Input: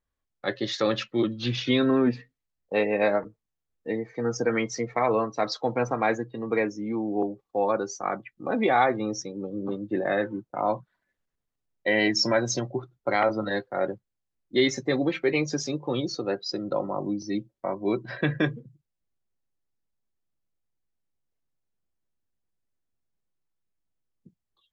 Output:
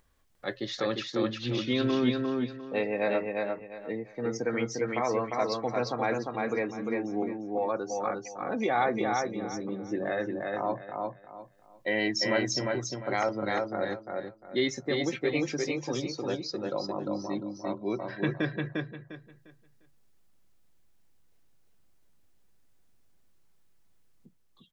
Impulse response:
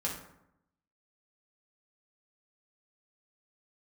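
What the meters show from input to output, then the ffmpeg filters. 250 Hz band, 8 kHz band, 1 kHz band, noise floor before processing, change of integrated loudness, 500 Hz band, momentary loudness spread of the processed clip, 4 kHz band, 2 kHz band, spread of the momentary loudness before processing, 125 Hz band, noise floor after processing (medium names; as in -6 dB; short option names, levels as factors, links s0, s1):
-3.5 dB, no reading, -3.5 dB, -84 dBFS, -4.0 dB, -3.5 dB, 10 LU, -3.5 dB, -3.5 dB, 10 LU, -3.5 dB, -61 dBFS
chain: -filter_complex "[0:a]acompressor=mode=upward:threshold=0.00501:ratio=2.5,asplit=2[s0][s1];[s1]aecho=0:1:351|702|1053|1404:0.708|0.184|0.0479|0.0124[s2];[s0][s2]amix=inputs=2:normalize=0,volume=0.531"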